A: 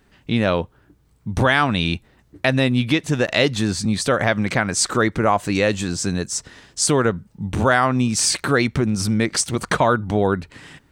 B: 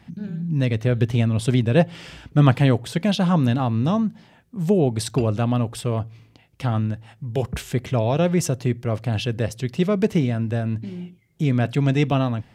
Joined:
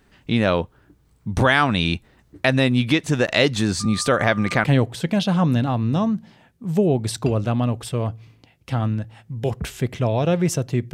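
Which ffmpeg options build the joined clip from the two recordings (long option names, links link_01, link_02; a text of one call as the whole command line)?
ffmpeg -i cue0.wav -i cue1.wav -filter_complex "[0:a]asettb=1/sr,asplit=3[link_01][link_02][link_03];[link_01]atrim=end=3.804[link_04];[link_02]atrim=start=3.8:end=4.64,asetpts=PTS-STARTPTS,afade=type=in:duration=0.004:curve=qsin,afade=type=out:start_time=0.836:duration=0.004:curve=qsin,aeval=exprs='val(0)+0.02*sin(2*PI*1200*n/s)':channel_layout=same[link_05];[link_03]atrim=start=4.636[link_06];[link_04][link_05]acrossfade=duration=0.004:curve1=hsin:curve2=qsin[link_07];[link_07][link_06]acrossfade=duration=0.004:curve1=qsin:curve2=hsin,apad=whole_dur=10.93,atrim=end=10.93,atrim=end=4.642[link_08];[1:a]atrim=start=2.558:end=8.85[link_09];[link_08][link_09]acrossfade=duration=0.004:curve1=hsin:curve2=hsin" out.wav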